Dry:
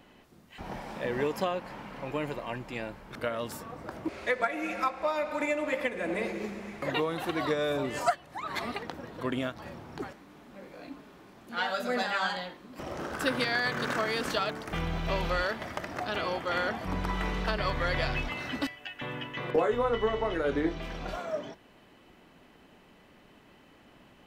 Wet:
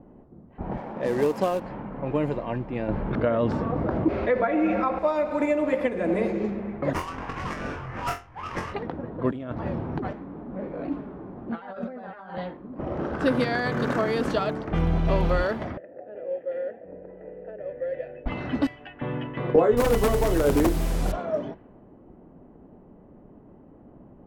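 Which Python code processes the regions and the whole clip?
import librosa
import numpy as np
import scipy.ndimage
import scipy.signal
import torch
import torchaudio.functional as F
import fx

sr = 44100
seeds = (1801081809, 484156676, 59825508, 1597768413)

y = fx.chain(x, sr, fx.highpass(hz=240.0, slope=6),
    fx.quant_companded(bits=4), at=(0.77, 1.6))
y = fx.chain(y, sr, fx.air_absorb(metres=220.0),
    fx.env_flatten(amount_pct=50), at=(2.88, 4.99))
y = fx.chain(y, sr, fx.cheby2_bandstop(low_hz=180.0, high_hz=570.0, order=4, stop_db=40),
    fx.sample_hold(seeds[0], rate_hz=4000.0, jitter_pct=20),
    fx.room_flutter(wall_m=3.9, rt60_s=0.26), at=(6.93, 8.74))
y = fx.chain(y, sr, fx.over_compress(threshold_db=-40.0, ratio=-1.0),
    fx.vibrato_shape(shape='saw_down', rate_hz=3.9, depth_cents=100.0), at=(9.31, 12.38))
y = fx.chain(y, sr, fx.vowel_filter(vowel='e'),
    fx.peak_eq(hz=4100.0, db=-6.5, octaves=2.6), at=(15.77, 18.26))
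y = fx.chain(y, sr, fx.low_shelf(hz=90.0, db=7.5),
    fx.quant_dither(seeds[1], bits=6, dither='triangular'),
    fx.overflow_wrap(gain_db=19.5), at=(19.77, 21.12))
y = fx.env_lowpass(y, sr, base_hz=770.0, full_db=-27.5)
y = fx.tilt_shelf(y, sr, db=8.0, hz=1100.0)
y = y * 10.0 ** (2.5 / 20.0)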